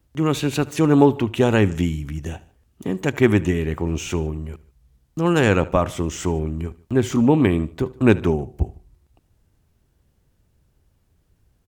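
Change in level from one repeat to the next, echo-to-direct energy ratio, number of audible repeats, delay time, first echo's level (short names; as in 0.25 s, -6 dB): -5.0 dB, -19.5 dB, 2, 75 ms, -20.5 dB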